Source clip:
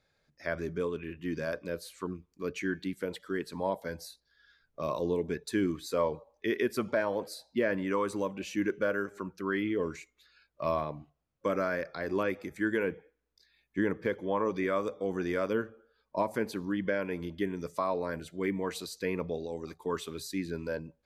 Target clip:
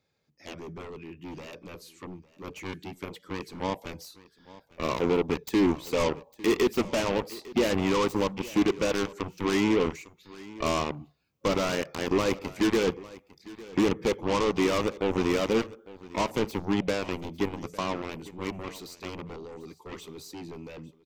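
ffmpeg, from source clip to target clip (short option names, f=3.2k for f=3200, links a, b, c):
-af "highpass=75,lowshelf=f=160:g=-4,asoftclip=type=tanh:threshold=-24.5dB,dynaudnorm=f=470:g=17:m=7dB,aeval=exprs='0.133*(cos(1*acos(clip(val(0)/0.133,-1,1)))-cos(1*PI/2))+0.0376*(cos(7*acos(clip(val(0)/0.133,-1,1)))-cos(7*PI/2))':c=same,equalizer=f=630:t=o:w=0.67:g=-7,equalizer=f=1.6k:t=o:w=0.67:g=-11,equalizer=f=4k:t=o:w=0.67:g=-5,equalizer=f=10k:t=o:w=0.67:g=-10,aecho=1:1:853:0.106,volume=3dB"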